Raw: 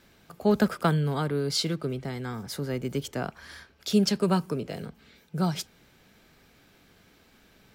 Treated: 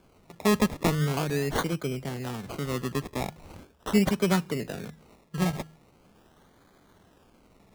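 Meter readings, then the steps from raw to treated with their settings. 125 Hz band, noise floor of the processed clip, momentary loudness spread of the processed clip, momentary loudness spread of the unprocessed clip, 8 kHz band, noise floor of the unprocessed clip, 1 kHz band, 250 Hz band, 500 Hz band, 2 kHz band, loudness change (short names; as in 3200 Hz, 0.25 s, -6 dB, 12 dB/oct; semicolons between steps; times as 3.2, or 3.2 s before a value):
-0.5 dB, -60 dBFS, 14 LU, 15 LU, 0.0 dB, -60 dBFS, +0.5 dB, 0.0 dB, -0.5 dB, +3.5 dB, 0.0 dB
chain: de-hum 52.56 Hz, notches 3; decimation with a swept rate 23×, swing 60% 0.41 Hz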